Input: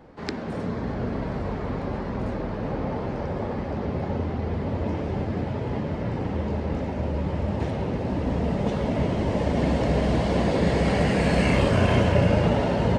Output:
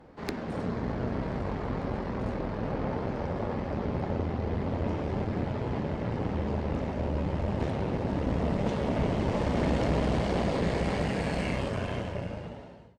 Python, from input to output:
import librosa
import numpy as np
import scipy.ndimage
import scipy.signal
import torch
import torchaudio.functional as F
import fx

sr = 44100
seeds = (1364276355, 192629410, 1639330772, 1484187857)

y = fx.fade_out_tail(x, sr, length_s=3.22)
y = fx.tube_stage(y, sr, drive_db=21.0, bias=0.75)
y = F.gain(torch.from_numpy(y), 1.0).numpy()